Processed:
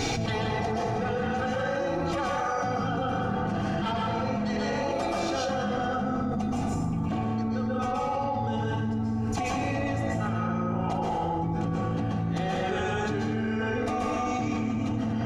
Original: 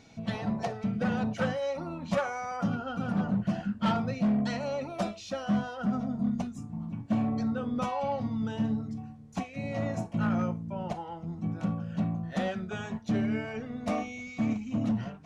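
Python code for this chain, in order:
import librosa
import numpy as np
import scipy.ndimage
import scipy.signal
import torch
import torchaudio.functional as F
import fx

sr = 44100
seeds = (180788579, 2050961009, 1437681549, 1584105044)

y = x + 0.71 * np.pad(x, (int(2.5 * sr / 1000.0), 0))[:len(x)]
y = fx.rev_plate(y, sr, seeds[0], rt60_s=1.3, hf_ratio=0.55, predelay_ms=115, drr_db=-4.0)
y = fx.env_flatten(y, sr, amount_pct=100)
y = F.gain(torch.from_numpy(y), -6.5).numpy()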